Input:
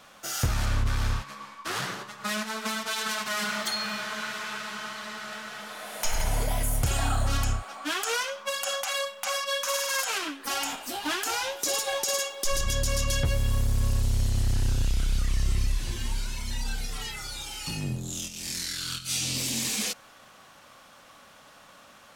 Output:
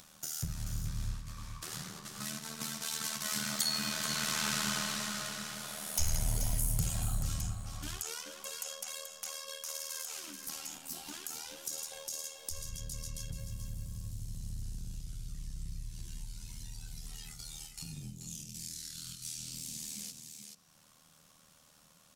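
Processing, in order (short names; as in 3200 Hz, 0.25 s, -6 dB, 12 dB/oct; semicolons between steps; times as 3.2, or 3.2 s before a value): Doppler pass-by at 4.6, 6 m/s, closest 2.3 m; AM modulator 78 Hz, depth 60%; bell 160 Hz +9 dB 0.3 oct; gate with hold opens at -58 dBFS; on a send at -17 dB: reverb RT60 0.50 s, pre-delay 3 ms; on the sum: upward compressor, threshold -47 dBFS; tone controls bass +10 dB, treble +15 dB; echo 0.432 s -9 dB; in parallel at -1 dB: compressor, threshold -50 dBFS, peak gain reduction 23 dB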